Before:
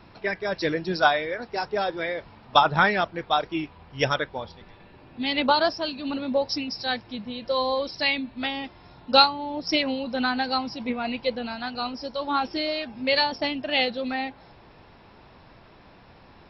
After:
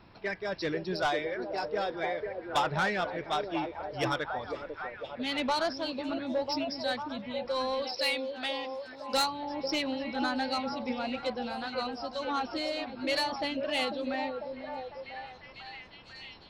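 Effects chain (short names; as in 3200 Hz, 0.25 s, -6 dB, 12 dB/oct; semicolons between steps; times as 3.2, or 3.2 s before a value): 7.82–9.14 tone controls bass -13 dB, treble +9 dB; soft clip -17.5 dBFS, distortion -11 dB; on a send: delay with a stepping band-pass 0.497 s, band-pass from 410 Hz, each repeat 0.7 oct, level -2 dB; on the sum: gain -5.5 dB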